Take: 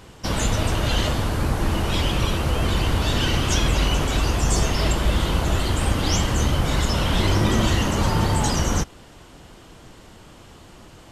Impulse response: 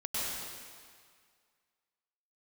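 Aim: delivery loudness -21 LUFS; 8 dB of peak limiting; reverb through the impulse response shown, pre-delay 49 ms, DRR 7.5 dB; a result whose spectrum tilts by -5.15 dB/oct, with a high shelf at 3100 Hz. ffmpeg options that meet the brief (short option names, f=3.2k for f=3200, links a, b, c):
-filter_complex "[0:a]highshelf=f=3.1k:g=-4.5,alimiter=limit=-15.5dB:level=0:latency=1,asplit=2[a][b];[1:a]atrim=start_sample=2205,adelay=49[c];[b][c]afir=irnorm=-1:irlink=0,volume=-13.5dB[d];[a][d]amix=inputs=2:normalize=0,volume=4dB"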